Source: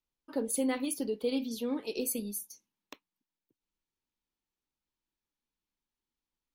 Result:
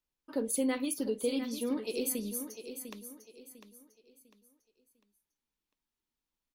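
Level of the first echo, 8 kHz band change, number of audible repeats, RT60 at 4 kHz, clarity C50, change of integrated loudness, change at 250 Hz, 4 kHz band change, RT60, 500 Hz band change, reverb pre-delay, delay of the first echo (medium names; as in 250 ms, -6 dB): -10.0 dB, +0.5 dB, 3, no reverb, no reverb, -0.5 dB, 0.0 dB, +0.5 dB, no reverb, 0.0 dB, no reverb, 700 ms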